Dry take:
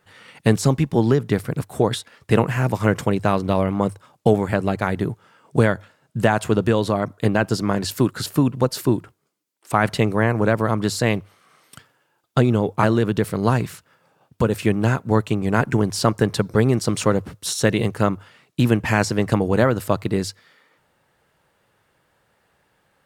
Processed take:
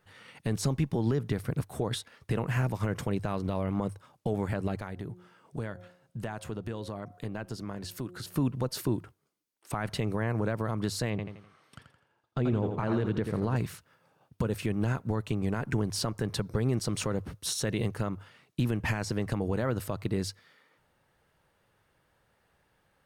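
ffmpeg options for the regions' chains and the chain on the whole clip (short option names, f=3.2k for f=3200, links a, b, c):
-filter_complex "[0:a]asettb=1/sr,asplit=3[a][b][c];[a]atrim=end=4.804[d];[b]atrim=start=4.8:end=8.36,asetpts=PTS-STARTPTS,afade=t=in:d=0.004:c=qsin,afade=t=out:st=3.556:d=0.004:c=qsin,bandreject=f=179:t=h:w=4,bandreject=f=358:t=h:w=4,bandreject=f=537:t=h:w=4,bandreject=f=716:t=h:w=4,acompressor=threshold=-37dB:ratio=2:attack=3.2:release=140:knee=1:detection=peak[e];[c]atrim=start=8.356[f];[d][e]acrossfade=d=0.004:c1=hsin:c2=qsin[g];[g][f]acrossfade=d=0.004:c1=qsin:c2=hsin,asettb=1/sr,asplit=3[h][i][j];[h]atrim=end=11.104[k];[i]atrim=start=11.1:end=13.56,asetpts=PTS-STARTPTS,afade=t=in:d=0.004:c=qsin,afade=t=out:st=2.456:d=0.004:c=qsin,aemphasis=mode=reproduction:type=50fm,aecho=1:1:84|168|252|336:0.355|0.135|0.0512|0.0195,atrim=end_sample=108486[l];[j]atrim=start=13.556[m];[k][l]acrossfade=d=0.004:c1=hsin:c2=qsin[n];[n][m]acrossfade=d=0.004:c1=qsin:c2=hsin,alimiter=limit=-13dB:level=0:latency=1:release=130,lowshelf=f=74:g=10.5,bandreject=f=7.4k:w=15,volume=-6.5dB"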